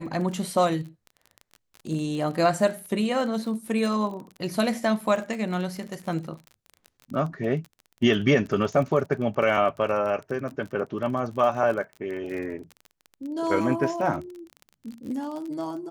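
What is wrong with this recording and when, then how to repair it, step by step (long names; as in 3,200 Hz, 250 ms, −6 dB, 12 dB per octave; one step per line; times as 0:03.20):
surface crackle 33 per second −33 dBFS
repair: click removal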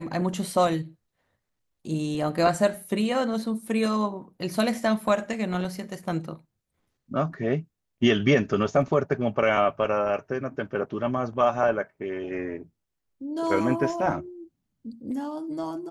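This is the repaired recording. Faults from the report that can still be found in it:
none of them is left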